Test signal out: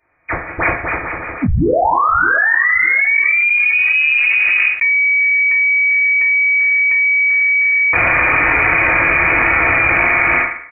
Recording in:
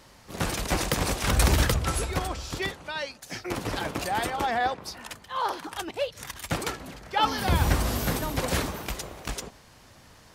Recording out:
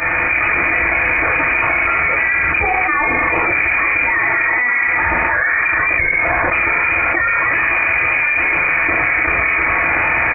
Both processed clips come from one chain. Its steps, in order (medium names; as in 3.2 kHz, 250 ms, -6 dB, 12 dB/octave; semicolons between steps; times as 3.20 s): partial rectifier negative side -7 dB; steep high-pass 180 Hz 48 dB/octave; level rider gain up to 14 dB; delay 306 ms -21.5 dB; FDN reverb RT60 0.67 s, low-frequency decay 0.7×, high-frequency decay 0.6×, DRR -9.5 dB; frequency inversion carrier 2.7 kHz; loudness maximiser +0.5 dB; level flattener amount 100%; trim -9 dB